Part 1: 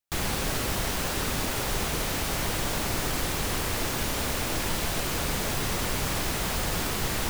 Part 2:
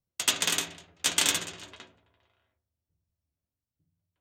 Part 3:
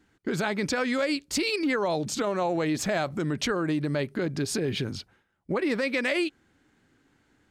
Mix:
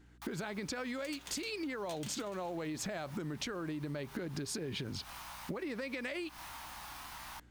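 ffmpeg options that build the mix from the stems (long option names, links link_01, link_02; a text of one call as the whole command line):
ffmpeg -i stem1.wav -i stem2.wav -i stem3.wav -filter_complex "[0:a]flanger=delay=20:depth=6.8:speed=0.38,lowshelf=frequency=610:width_type=q:width=3:gain=-13.5,adelay=100,volume=-12dB[link_01];[1:a]acrusher=bits=2:mode=log:mix=0:aa=0.000001,adelay=850,volume=-13dB[link_02];[2:a]acompressor=threshold=-30dB:ratio=10,aeval=exprs='val(0)+0.00112*(sin(2*PI*60*n/s)+sin(2*PI*2*60*n/s)/2+sin(2*PI*3*60*n/s)/3+sin(2*PI*4*60*n/s)/4+sin(2*PI*5*60*n/s)/5)':channel_layout=same,volume=-1dB,asplit=2[link_03][link_04];[link_04]apad=whole_len=326213[link_05];[link_01][link_05]sidechaincompress=threshold=-48dB:ratio=8:attack=34:release=175[link_06];[link_06][link_02]amix=inputs=2:normalize=0,equalizer=frequency=7500:width=4:gain=-4.5,acompressor=threshold=-45dB:ratio=3,volume=0dB[link_07];[link_03][link_07]amix=inputs=2:normalize=0,acompressor=threshold=-36dB:ratio=6" out.wav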